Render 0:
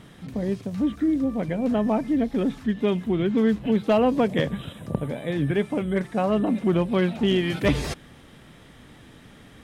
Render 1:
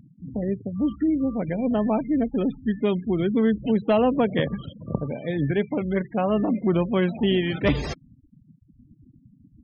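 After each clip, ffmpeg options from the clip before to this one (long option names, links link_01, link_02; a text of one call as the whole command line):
ffmpeg -i in.wav -af "afftfilt=real='re*gte(hypot(re,im),0.0224)':imag='im*gte(hypot(re,im),0.0224)':win_size=1024:overlap=0.75" out.wav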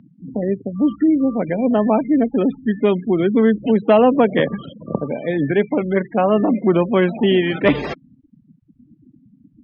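ffmpeg -i in.wav -filter_complex "[0:a]acrossover=split=180 3500:gain=0.141 1 0.0794[link_01][link_02][link_03];[link_01][link_02][link_03]amix=inputs=3:normalize=0,volume=8dB" out.wav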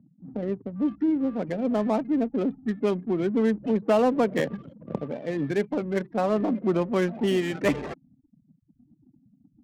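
ffmpeg -i in.wav -af "adynamicsmooth=sensitivity=2.5:basefreq=530,volume=-8.5dB" out.wav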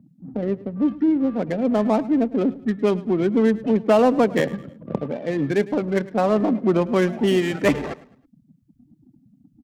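ffmpeg -i in.wav -af "aecho=1:1:106|212|318:0.112|0.0404|0.0145,volume=5dB" out.wav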